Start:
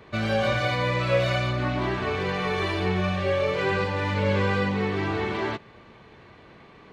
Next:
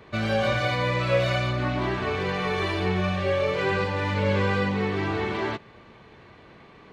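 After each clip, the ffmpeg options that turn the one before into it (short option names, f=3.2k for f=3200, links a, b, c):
-af anull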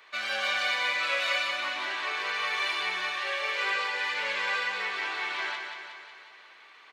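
-filter_complex "[0:a]highpass=1.4k,asplit=2[a][b];[b]aecho=0:1:182|364|546|728|910|1092|1274|1456:0.501|0.296|0.174|0.103|0.0607|0.0358|0.0211|0.0125[c];[a][c]amix=inputs=2:normalize=0,volume=2dB"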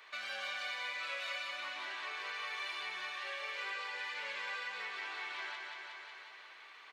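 -af "lowshelf=f=360:g=-5.5,acompressor=threshold=-45dB:ratio=2,volume=-1.5dB"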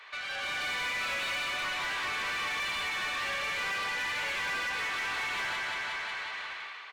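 -filter_complex "[0:a]dynaudnorm=f=150:g=7:m=11dB,asplit=2[a][b];[b]highpass=f=720:p=1,volume=23dB,asoftclip=type=tanh:threshold=-17dB[c];[a][c]amix=inputs=2:normalize=0,lowpass=f=3.9k:p=1,volume=-6dB,volume=-9dB"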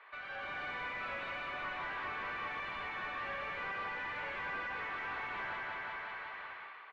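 -af "lowpass=1.6k,volume=-3dB"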